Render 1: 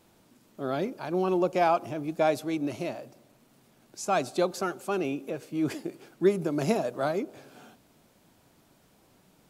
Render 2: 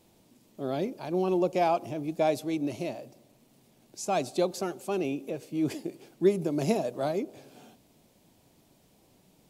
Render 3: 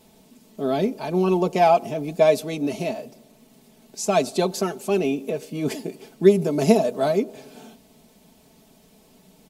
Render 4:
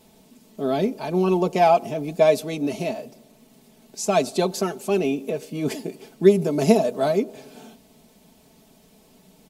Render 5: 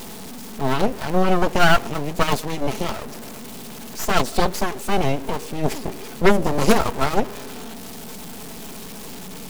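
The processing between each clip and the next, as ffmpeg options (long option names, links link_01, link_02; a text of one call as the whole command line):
ffmpeg -i in.wav -af "equalizer=frequency=1400:width=1.7:gain=-9.5" out.wav
ffmpeg -i in.wav -af "aecho=1:1:4.6:0.7,volume=6.5dB" out.wav
ffmpeg -i in.wav -af anull out.wav
ffmpeg -i in.wav -af "aeval=exprs='val(0)+0.5*0.0668*sgn(val(0))':channel_layout=same,bandreject=frequency=620:width=12,aeval=exprs='0.841*(cos(1*acos(clip(val(0)/0.841,-1,1)))-cos(1*PI/2))+0.106*(cos(3*acos(clip(val(0)/0.841,-1,1)))-cos(3*PI/2))+0.0668*(cos(5*acos(clip(val(0)/0.841,-1,1)))-cos(5*PI/2))+0.0531*(cos(7*acos(clip(val(0)/0.841,-1,1)))-cos(7*PI/2))+0.299*(cos(8*acos(clip(val(0)/0.841,-1,1)))-cos(8*PI/2))':channel_layout=same,volume=-3dB" out.wav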